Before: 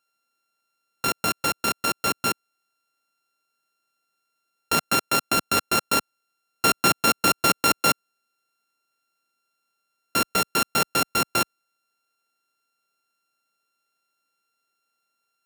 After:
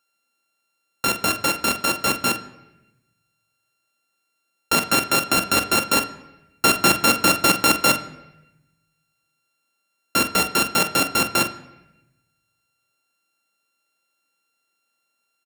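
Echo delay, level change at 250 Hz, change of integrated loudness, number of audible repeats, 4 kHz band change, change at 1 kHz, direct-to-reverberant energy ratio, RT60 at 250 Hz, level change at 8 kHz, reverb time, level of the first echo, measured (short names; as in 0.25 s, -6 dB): 44 ms, +4.5 dB, +3.5 dB, 1, +4.0 dB, +2.0 dB, 7.0 dB, 1.2 s, +3.5 dB, 0.95 s, -10.5 dB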